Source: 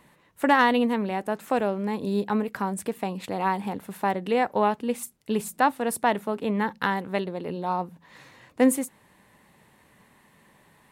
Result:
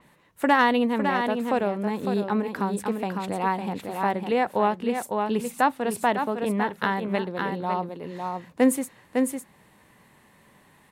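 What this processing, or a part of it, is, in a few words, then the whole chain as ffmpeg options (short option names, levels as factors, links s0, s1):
ducked delay: -filter_complex "[0:a]asplit=3[s0][s1][s2];[s1]adelay=555,volume=0.631[s3];[s2]apad=whole_len=506041[s4];[s3][s4]sidechaincompress=threshold=0.0447:ratio=8:attack=29:release=198[s5];[s0][s5]amix=inputs=2:normalize=0,adynamicequalizer=threshold=0.00447:dfrequency=5900:dqfactor=0.7:tfrequency=5900:tqfactor=0.7:attack=5:release=100:ratio=0.375:range=2.5:mode=cutabove:tftype=highshelf"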